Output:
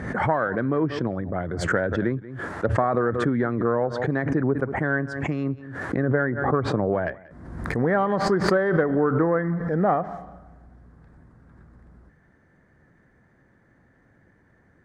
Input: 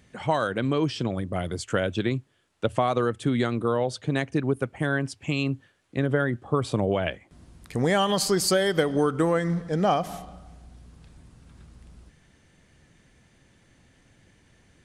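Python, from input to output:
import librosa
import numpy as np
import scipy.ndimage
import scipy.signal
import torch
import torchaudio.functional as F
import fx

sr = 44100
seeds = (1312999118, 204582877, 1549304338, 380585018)

y = fx.self_delay(x, sr, depth_ms=0.088)
y = fx.highpass(y, sr, hz=450.0, slope=6)
y = fx.tilt_eq(y, sr, slope=-3.5)
y = fx.env_lowpass_down(y, sr, base_hz=2700.0, full_db=-19.0)
y = fx.high_shelf_res(y, sr, hz=2200.0, db=-8.0, q=3.0)
y = y + 10.0 ** (-21.5 / 20.0) * np.pad(y, (int(184 * sr / 1000.0), 0))[:len(y)]
y = fx.pre_swell(y, sr, db_per_s=50.0)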